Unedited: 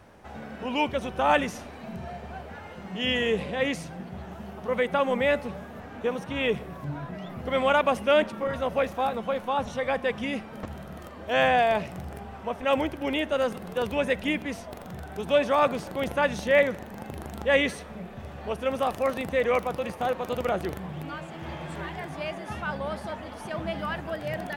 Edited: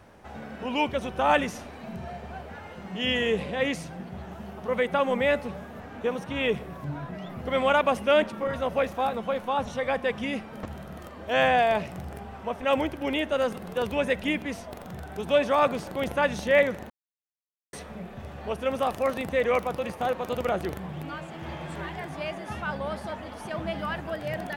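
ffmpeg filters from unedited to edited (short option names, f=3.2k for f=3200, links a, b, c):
-filter_complex "[0:a]asplit=3[a][b][c];[a]atrim=end=16.9,asetpts=PTS-STARTPTS,afade=t=out:st=16.896:d=0.004:c=hsin[d];[b]atrim=start=16.9:end=17.73,asetpts=PTS-STARTPTS,volume=0[e];[c]atrim=start=17.73,asetpts=PTS-STARTPTS,afade=t=in:d=0.004:c=hsin[f];[d][e][f]concat=n=3:v=0:a=1"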